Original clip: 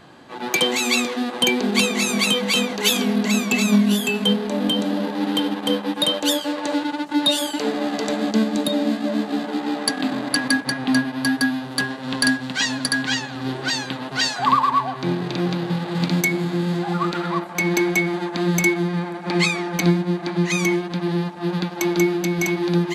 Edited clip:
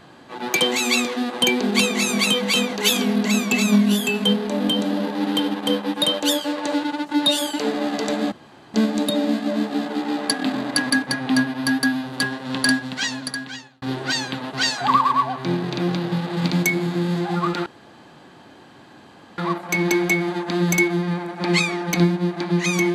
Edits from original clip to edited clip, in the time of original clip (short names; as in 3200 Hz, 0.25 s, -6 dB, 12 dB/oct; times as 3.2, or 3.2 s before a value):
8.32 insert room tone 0.42 s
12.31–13.4 fade out
17.24 insert room tone 1.72 s